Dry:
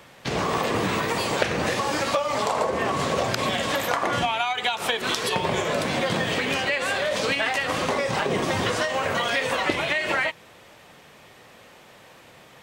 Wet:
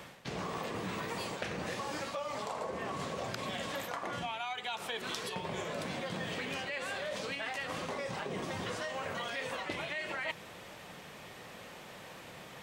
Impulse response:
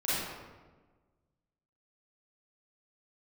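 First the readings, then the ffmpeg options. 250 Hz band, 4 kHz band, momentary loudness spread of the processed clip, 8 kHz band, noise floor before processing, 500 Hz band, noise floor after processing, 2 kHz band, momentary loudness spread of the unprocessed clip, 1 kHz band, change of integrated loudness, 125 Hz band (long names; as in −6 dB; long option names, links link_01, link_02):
−12.5 dB, −13.5 dB, 12 LU, −13.5 dB, −50 dBFS, −14.0 dB, −50 dBFS, −13.5 dB, 2 LU, −14.0 dB, −14.0 dB, −12.5 dB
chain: -af "equalizer=frequency=180:width_type=o:width=0.28:gain=5,areverse,acompressor=threshold=-35dB:ratio=12,areverse"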